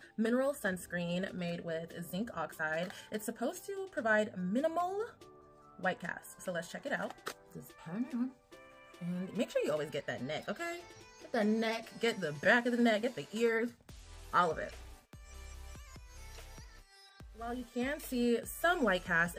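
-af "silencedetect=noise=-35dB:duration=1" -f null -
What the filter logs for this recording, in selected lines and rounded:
silence_start: 14.68
silence_end: 17.42 | silence_duration: 2.74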